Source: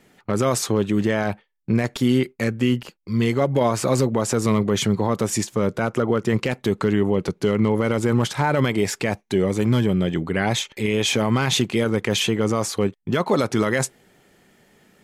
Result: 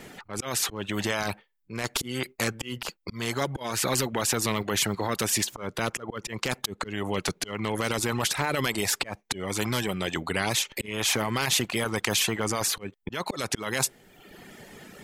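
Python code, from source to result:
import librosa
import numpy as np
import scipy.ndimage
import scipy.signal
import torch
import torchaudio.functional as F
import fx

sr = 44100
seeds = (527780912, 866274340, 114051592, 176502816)

y = fx.auto_swell(x, sr, attack_ms=315.0)
y = fx.dereverb_blind(y, sr, rt60_s=0.8)
y = fx.spectral_comp(y, sr, ratio=2.0)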